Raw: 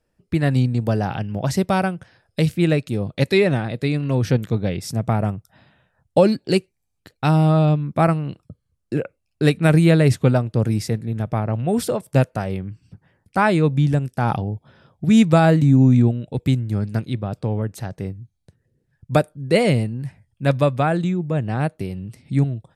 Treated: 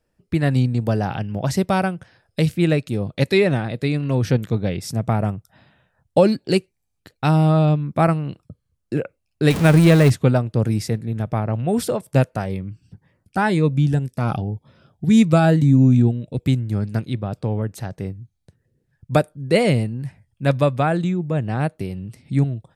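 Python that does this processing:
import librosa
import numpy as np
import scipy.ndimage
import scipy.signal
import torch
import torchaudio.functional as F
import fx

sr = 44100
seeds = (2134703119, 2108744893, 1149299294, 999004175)

y = fx.zero_step(x, sr, step_db=-19.5, at=(9.5, 10.1))
y = fx.notch_cascade(y, sr, direction='rising', hz=1.9, at=(12.45, 16.42), fade=0.02)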